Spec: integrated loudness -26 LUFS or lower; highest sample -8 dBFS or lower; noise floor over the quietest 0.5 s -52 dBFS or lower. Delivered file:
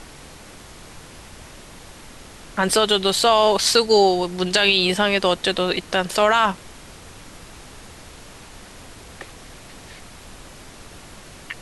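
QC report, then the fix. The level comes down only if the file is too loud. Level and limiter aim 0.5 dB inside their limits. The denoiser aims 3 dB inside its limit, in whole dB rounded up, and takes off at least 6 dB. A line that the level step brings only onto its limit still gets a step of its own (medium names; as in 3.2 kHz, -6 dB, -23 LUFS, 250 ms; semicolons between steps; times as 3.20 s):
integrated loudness -18.0 LUFS: fail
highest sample -5.0 dBFS: fail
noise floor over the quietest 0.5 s -42 dBFS: fail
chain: noise reduction 6 dB, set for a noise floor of -42 dBFS; trim -8.5 dB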